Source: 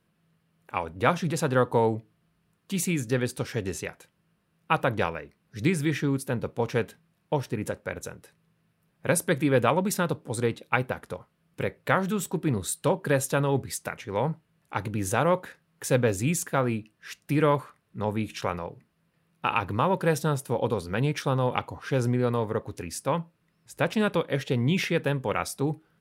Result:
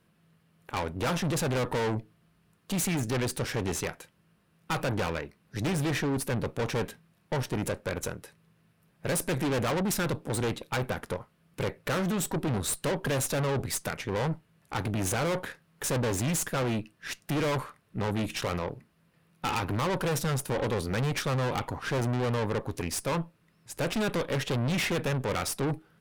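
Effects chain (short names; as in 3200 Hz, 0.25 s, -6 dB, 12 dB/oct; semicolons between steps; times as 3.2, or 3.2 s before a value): tube stage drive 34 dB, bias 0.7; gain +8 dB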